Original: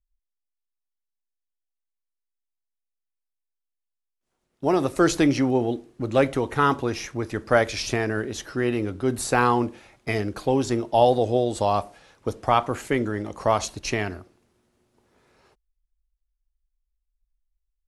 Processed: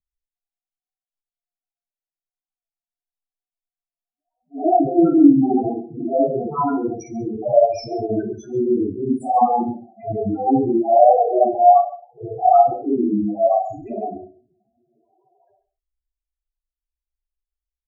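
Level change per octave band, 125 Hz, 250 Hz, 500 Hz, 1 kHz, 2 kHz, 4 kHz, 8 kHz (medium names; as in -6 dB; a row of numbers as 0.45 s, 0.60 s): -4.0 dB, +7.0 dB, +5.5 dB, +8.0 dB, under -20 dB, under -10 dB, under -15 dB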